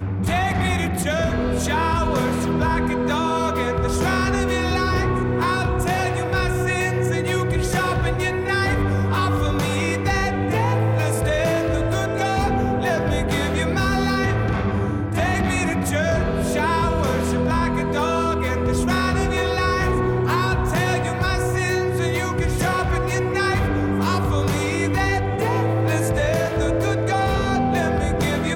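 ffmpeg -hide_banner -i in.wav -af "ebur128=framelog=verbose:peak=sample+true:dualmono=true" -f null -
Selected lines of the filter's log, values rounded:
Integrated loudness:
  I:         -18.0 LUFS
  Threshold: -28.0 LUFS
Loudness range:
  LRA:         0.5 LU
  Threshold: -38.0 LUFS
  LRA low:   -18.3 LUFS
  LRA high:  -17.7 LUFS
Sample peak:
  Peak:      -11.7 dBFS
True peak:
  Peak:      -11.6 dBFS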